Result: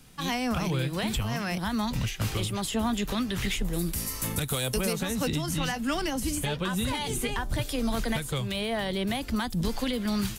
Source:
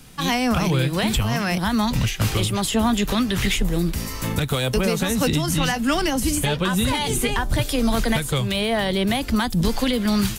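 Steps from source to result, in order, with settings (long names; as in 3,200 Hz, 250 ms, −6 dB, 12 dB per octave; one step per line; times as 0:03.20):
0:03.73–0:04.93: parametric band 11,000 Hz +12.5 dB 1.3 octaves
level −8 dB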